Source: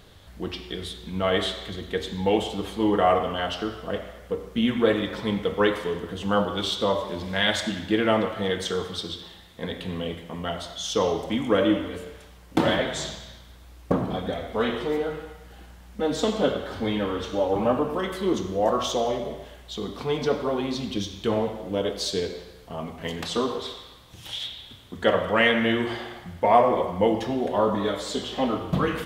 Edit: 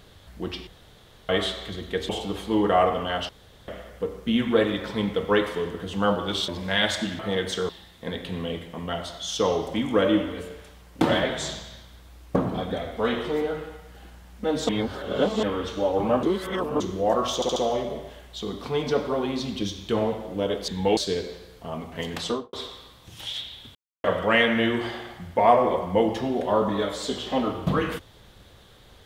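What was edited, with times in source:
0.67–1.29 room tone
2.09–2.38 move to 22.03
3.58–3.97 room tone
6.77–7.13 cut
7.84–8.32 cut
8.82–9.25 cut
16.25–16.99 reverse
17.79–18.36 reverse
18.91 stutter 0.07 s, 4 plays
23.31–23.59 studio fade out
24.81–25.1 mute

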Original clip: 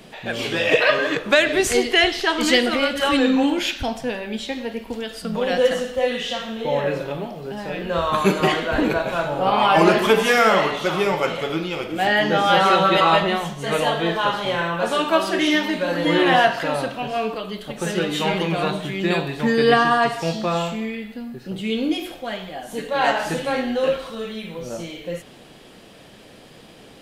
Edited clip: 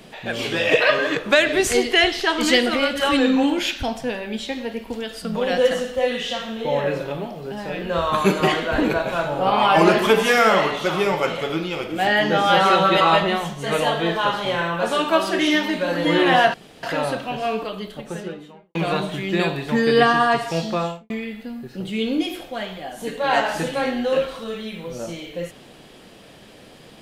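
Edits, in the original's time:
16.54 insert room tone 0.29 s
17.35–18.46 studio fade out
20.45–20.81 studio fade out

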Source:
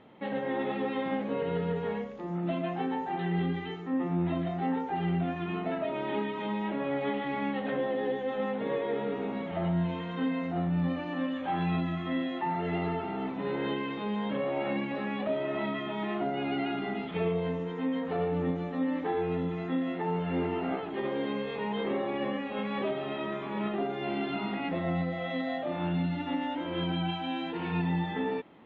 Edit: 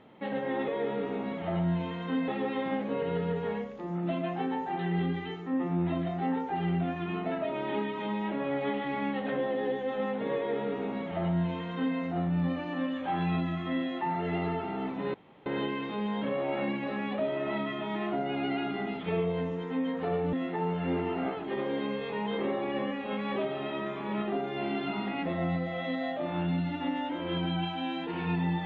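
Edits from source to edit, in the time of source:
8.77–10.37 copy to 0.68
13.54 insert room tone 0.32 s
18.41–19.79 cut

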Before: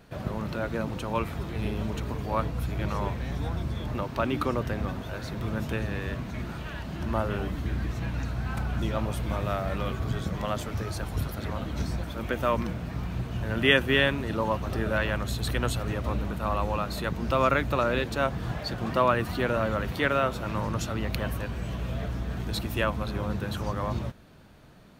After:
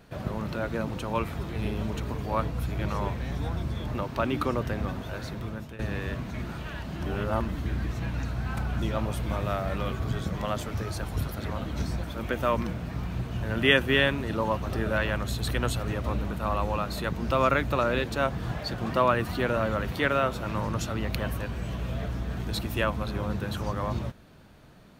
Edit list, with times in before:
5.23–5.79 fade out, to -16 dB
7.05–7.49 reverse

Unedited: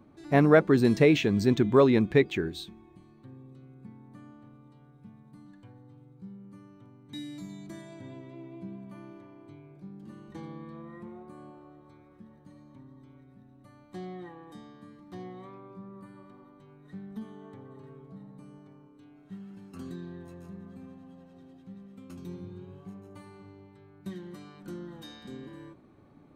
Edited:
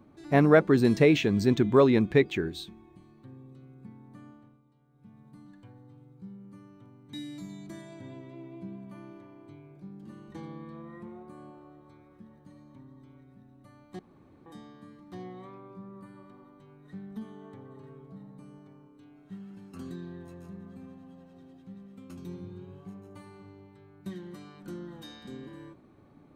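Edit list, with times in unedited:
4.28–5.23 dip -11 dB, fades 0.34 s
13.99–14.46 room tone

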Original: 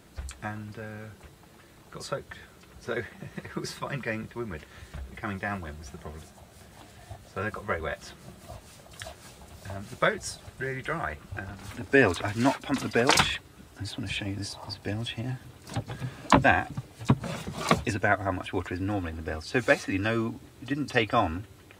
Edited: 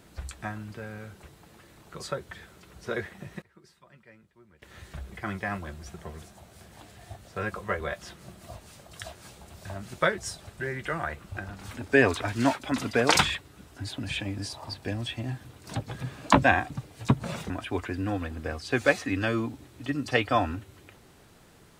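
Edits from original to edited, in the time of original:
3.05–4.99 dip -22.5 dB, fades 0.37 s logarithmic
17.5–18.32 cut

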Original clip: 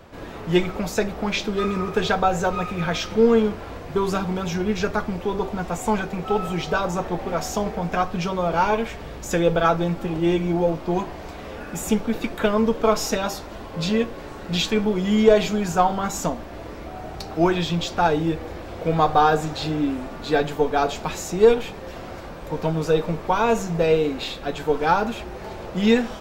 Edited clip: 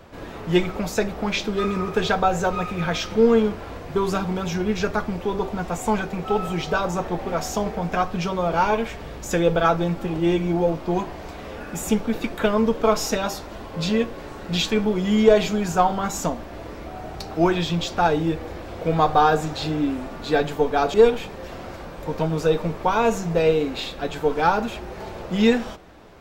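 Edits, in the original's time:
20.94–21.38 cut

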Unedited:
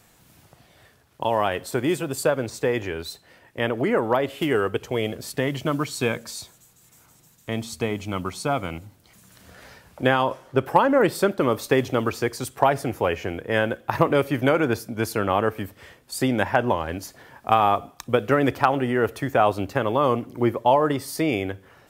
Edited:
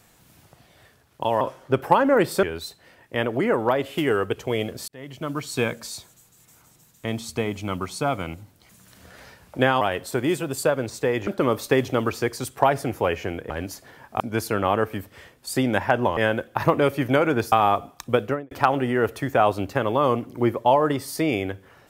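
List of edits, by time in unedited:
1.41–2.87 swap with 10.25–11.27
5.32–6.05 fade in linear
13.5–14.85 swap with 16.82–17.52
18.18–18.51 studio fade out

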